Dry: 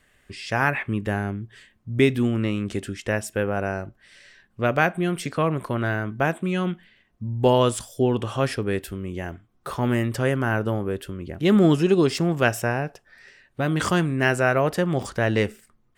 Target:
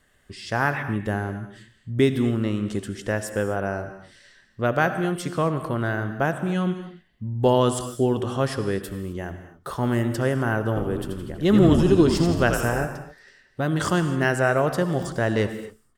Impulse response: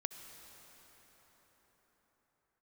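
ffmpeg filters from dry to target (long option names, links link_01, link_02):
-filter_complex "[0:a]equalizer=frequency=2400:width_type=o:width=0.38:gain=-9,asplit=3[link_01][link_02][link_03];[link_01]afade=type=out:start_time=10.75:duration=0.02[link_04];[link_02]asplit=7[link_05][link_06][link_07][link_08][link_09][link_10][link_11];[link_06]adelay=83,afreqshift=-73,volume=-6dB[link_12];[link_07]adelay=166,afreqshift=-146,volume=-12dB[link_13];[link_08]adelay=249,afreqshift=-219,volume=-18dB[link_14];[link_09]adelay=332,afreqshift=-292,volume=-24.1dB[link_15];[link_10]adelay=415,afreqshift=-365,volume=-30.1dB[link_16];[link_11]adelay=498,afreqshift=-438,volume=-36.1dB[link_17];[link_05][link_12][link_13][link_14][link_15][link_16][link_17]amix=inputs=7:normalize=0,afade=type=in:start_time=10.75:duration=0.02,afade=type=out:start_time=12.84:duration=0.02[link_18];[link_03]afade=type=in:start_time=12.84:duration=0.02[link_19];[link_04][link_18][link_19]amix=inputs=3:normalize=0[link_20];[1:a]atrim=start_sample=2205,afade=type=out:start_time=0.32:duration=0.01,atrim=end_sample=14553[link_21];[link_20][link_21]afir=irnorm=-1:irlink=0,volume=1.5dB"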